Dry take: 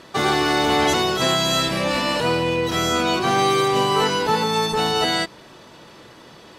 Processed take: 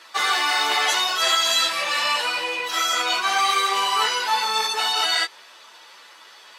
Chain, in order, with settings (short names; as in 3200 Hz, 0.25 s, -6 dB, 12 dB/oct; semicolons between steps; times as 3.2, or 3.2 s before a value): HPF 1100 Hz 12 dB/oct; ensemble effect; gain +5.5 dB